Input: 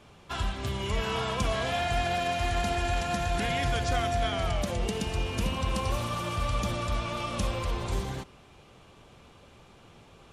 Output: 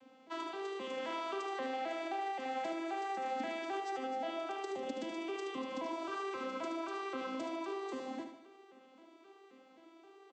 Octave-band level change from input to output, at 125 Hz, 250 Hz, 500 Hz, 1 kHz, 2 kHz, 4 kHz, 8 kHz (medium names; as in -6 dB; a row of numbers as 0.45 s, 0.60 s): under -35 dB, -6.5 dB, -7.0 dB, -7.0 dB, -10.5 dB, -14.0 dB, -17.5 dB